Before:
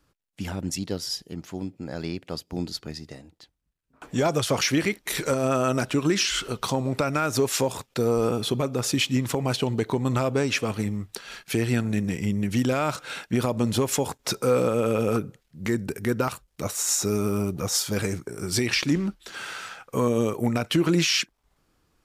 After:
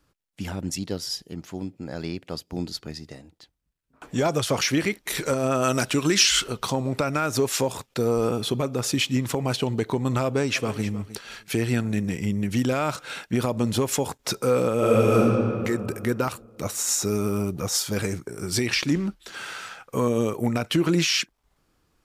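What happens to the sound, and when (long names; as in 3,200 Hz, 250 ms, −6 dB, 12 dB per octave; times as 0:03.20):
0:05.62–0:06.44: high-shelf EQ 2,100 Hz +8 dB
0:10.24–0:10.86: delay throw 310 ms, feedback 15%, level −15.5 dB
0:14.75–0:15.22: thrown reverb, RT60 2.4 s, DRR −4.5 dB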